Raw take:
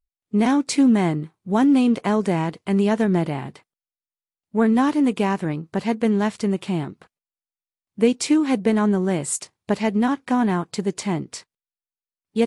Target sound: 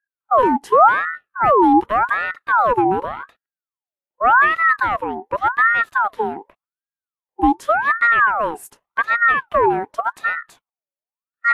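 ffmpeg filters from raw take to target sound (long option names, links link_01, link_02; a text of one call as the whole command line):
ffmpeg -i in.wav -af "asetrate=47628,aresample=44100,equalizer=frequency=250:width_type=o:width=1:gain=10,equalizer=frequency=500:width_type=o:width=1:gain=-7,equalizer=frequency=4000:width_type=o:width=1:gain=-12,equalizer=frequency=8000:width_type=o:width=1:gain=-12,aeval=exprs='val(0)*sin(2*PI*1100*n/s+1100*0.5/0.87*sin(2*PI*0.87*n/s))':channel_layout=same" out.wav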